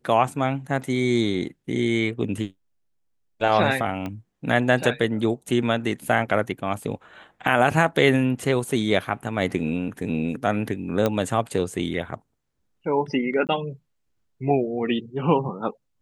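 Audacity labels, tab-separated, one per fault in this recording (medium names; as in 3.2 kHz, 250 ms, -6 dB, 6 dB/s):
4.060000	4.060000	pop -18 dBFS
11.060000	11.060000	pop -9 dBFS
13.470000	13.490000	dropout 18 ms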